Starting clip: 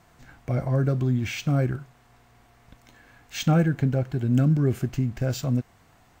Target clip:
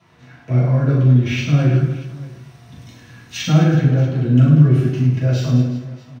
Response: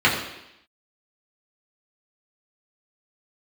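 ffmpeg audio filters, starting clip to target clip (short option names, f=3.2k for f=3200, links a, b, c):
-filter_complex "[0:a]asettb=1/sr,asplit=3[a][b][c];[a]atrim=end=1.774[d];[b]atrim=start=1.77:end=3.37,asetpts=PTS-STARTPTS,afade=t=in:d=0.004:c=qsin,afade=t=out:st=1.596:d=0.004:c=qsin,bass=f=250:g=13,treble=f=4k:g=13[e];[c]atrim=start=3.366[f];[d][e]acrossfade=d=0.004:c1=hsin:c2=qsin[g];[g][f]acrossfade=d=0.004:c1=qsin:c2=hsin,aecho=1:1:40|104|206.4|370.2|632.4:0.631|0.398|0.251|0.158|0.1[h];[1:a]atrim=start_sample=2205,asetrate=57330,aresample=44100[i];[h][i]afir=irnorm=-1:irlink=0,volume=-13.5dB"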